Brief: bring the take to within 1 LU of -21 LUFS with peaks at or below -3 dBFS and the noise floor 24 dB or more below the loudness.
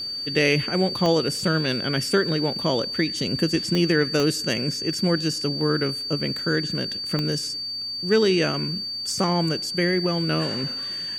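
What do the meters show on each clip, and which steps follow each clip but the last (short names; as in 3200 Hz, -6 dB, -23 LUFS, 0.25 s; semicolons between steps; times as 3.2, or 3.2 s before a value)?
clicks 4; steady tone 4600 Hz; tone level -28 dBFS; loudness -23.0 LUFS; peak -7.0 dBFS; loudness target -21.0 LUFS
-> de-click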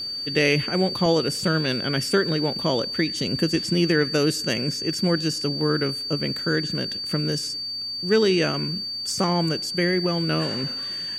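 clicks 2; steady tone 4600 Hz; tone level -28 dBFS
-> notch 4600 Hz, Q 30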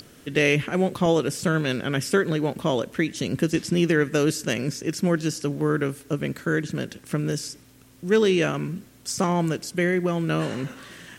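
steady tone none; loudness -24.5 LUFS; peak -7.5 dBFS; loudness target -21.0 LUFS
-> gain +3.5 dB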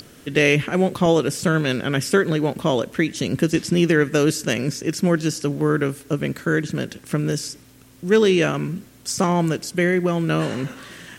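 loudness -21.0 LUFS; peak -4.0 dBFS; noise floor -48 dBFS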